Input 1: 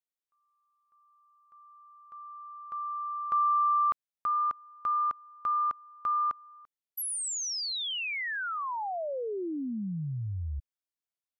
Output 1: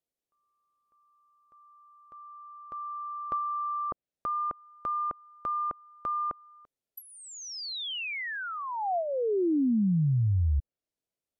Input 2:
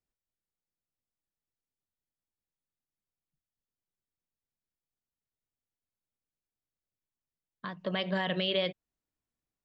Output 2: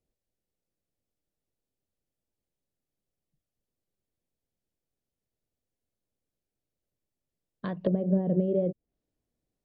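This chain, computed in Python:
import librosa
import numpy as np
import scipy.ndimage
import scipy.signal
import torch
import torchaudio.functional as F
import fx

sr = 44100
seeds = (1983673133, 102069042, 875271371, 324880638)

y = fx.low_shelf_res(x, sr, hz=780.0, db=9.0, q=1.5)
y = fx.env_lowpass_down(y, sr, base_hz=370.0, full_db=-22.5)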